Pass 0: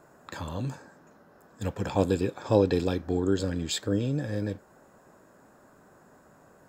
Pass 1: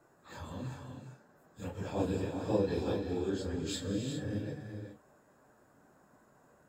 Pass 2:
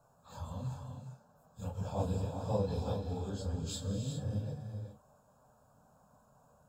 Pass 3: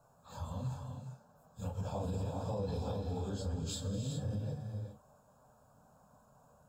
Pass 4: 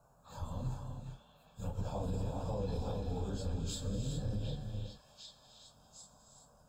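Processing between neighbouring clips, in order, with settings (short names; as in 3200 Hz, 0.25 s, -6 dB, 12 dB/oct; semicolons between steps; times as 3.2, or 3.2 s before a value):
phase scrambler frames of 0.1 s; non-linear reverb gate 0.43 s rising, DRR 4.5 dB; gain -8.5 dB
low shelf 320 Hz +5.5 dB; fixed phaser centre 820 Hz, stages 4
limiter -30 dBFS, peak gain reduction 10 dB; gain +1 dB
octaver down 2 oct, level -3 dB; delay with a stepping band-pass 0.755 s, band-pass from 2600 Hz, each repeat 0.7 oct, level -3 dB; gain -1 dB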